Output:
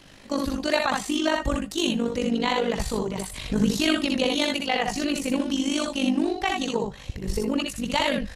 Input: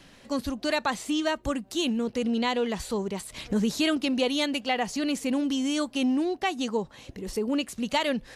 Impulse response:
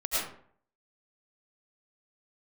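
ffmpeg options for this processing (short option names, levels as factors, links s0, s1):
-filter_complex "[0:a]asubboost=boost=4:cutoff=120,tremolo=f=50:d=0.75,aecho=1:1:64|79:0.668|0.316,asplit=2[s0][s1];[1:a]atrim=start_sample=2205,atrim=end_sample=3969[s2];[s1][s2]afir=irnorm=-1:irlink=0,volume=0.158[s3];[s0][s3]amix=inputs=2:normalize=0,volume=1.58"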